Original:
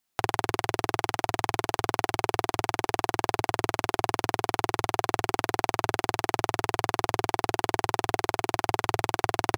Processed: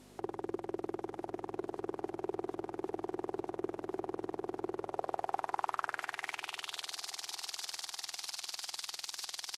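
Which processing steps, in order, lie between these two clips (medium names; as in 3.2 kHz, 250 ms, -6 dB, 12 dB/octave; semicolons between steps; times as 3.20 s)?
one-bit delta coder 64 kbps, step -33.5 dBFS; pre-emphasis filter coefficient 0.8; hum 50 Hz, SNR 12 dB; band-pass sweep 370 Hz -> 4.6 kHz, 4.69–6.96 s; on a send: feedback delay 887 ms, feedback 55%, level -19 dB; on the sum: trim +11 dB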